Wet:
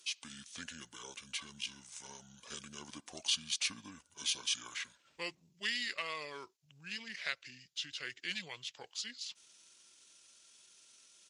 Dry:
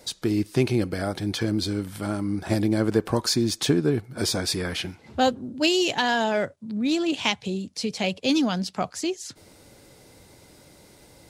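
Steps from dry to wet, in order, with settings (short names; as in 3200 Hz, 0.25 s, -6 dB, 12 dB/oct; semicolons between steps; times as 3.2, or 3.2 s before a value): differentiator; pitch shift -7 st; gain -4.5 dB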